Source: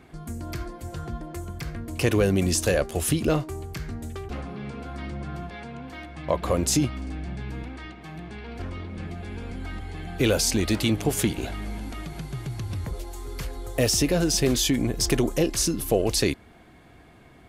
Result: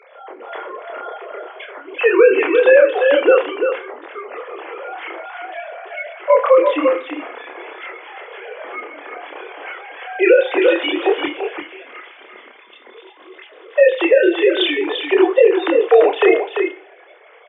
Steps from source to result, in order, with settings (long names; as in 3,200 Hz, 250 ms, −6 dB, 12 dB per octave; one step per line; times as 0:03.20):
three sine waves on the formant tracks
Butterworth high-pass 400 Hz 36 dB per octave
0:11.25–0:13.75: parametric band 780 Hz −13 dB 2.3 octaves
multi-voice chorus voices 2, 0.49 Hz, delay 28 ms, depth 4.6 ms
single-tap delay 343 ms −7 dB
coupled-rooms reverb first 0.38 s, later 1.9 s, from −25 dB, DRR 9.5 dB
boost into a limiter +16.5 dB
level −1 dB